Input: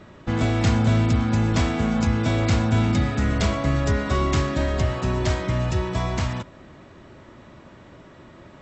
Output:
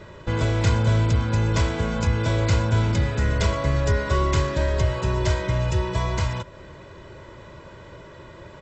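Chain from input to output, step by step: comb 2 ms, depth 62%; in parallel at -2 dB: compressor, threshold -34 dBFS, peak gain reduction 19.5 dB; on the sum: gain -2.5 dB

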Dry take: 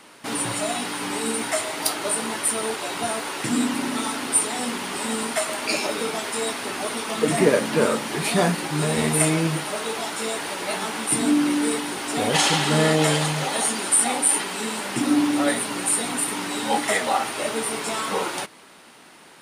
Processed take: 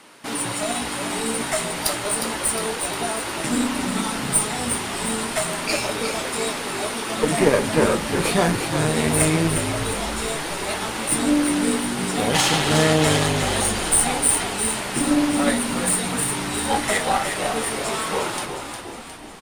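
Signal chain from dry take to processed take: added harmonics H 2 -16 dB, 6 -24 dB, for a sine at -4.5 dBFS; frequency-shifting echo 0.358 s, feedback 57%, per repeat -54 Hz, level -7 dB

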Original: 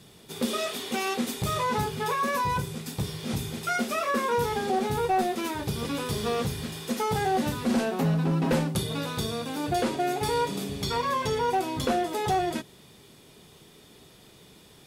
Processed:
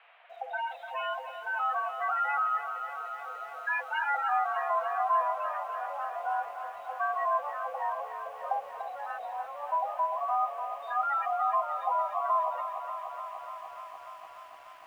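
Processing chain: spectral gate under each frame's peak -10 dB strong; requantised 8-bit, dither triangular; air absorption 260 m; mistuned SSB +280 Hz 400–2700 Hz; lo-fi delay 0.295 s, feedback 80%, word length 10-bit, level -10 dB

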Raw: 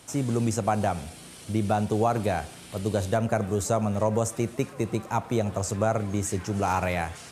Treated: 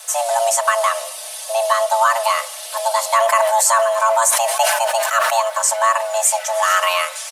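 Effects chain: frequency shift +450 Hz; comb 4.6 ms, depth 77%; requantised 12-bit, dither none; high shelf 2900 Hz +11.5 dB; 3.12–5.38 sustainer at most 33 dB/s; gain +5 dB

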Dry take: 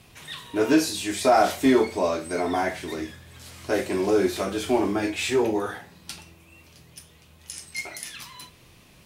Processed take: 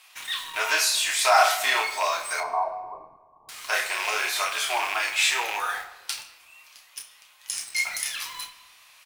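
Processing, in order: rattling part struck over -31 dBFS, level -23 dBFS; HPF 900 Hz 24 dB/oct; in parallel at -5.5 dB: bit-crush 7-bit; 2.4–3.49 on the sum: brick-wall FIR low-pass 1200 Hz; doubler 30 ms -8 dB; shoebox room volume 950 m³, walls mixed, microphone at 0.53 m; gain +2.5 dB

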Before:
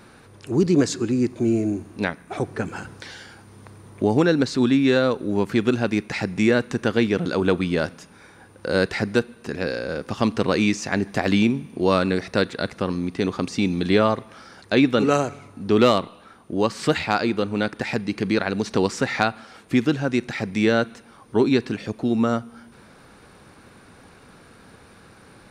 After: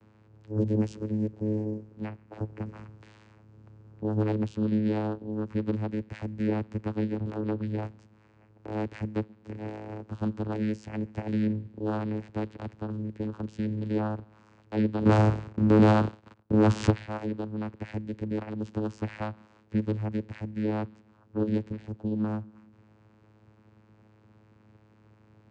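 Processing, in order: 15.05–16.9 sample leveller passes 5; vocoder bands 8, saw 107 Hz; gain -8.5 dB

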